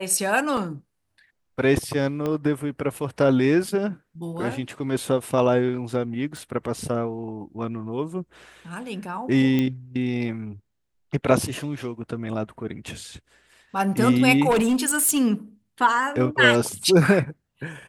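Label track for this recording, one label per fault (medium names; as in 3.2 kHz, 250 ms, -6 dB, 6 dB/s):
0.570000	0.570000	dropout 2.9 ms
2.260000	2.260000	pop -15 dBFS
6.370000	6.370000	pop
9.590000	9.590000	pop -12 dBFS
14.500000	15.200000	clipped -16.5 dBFS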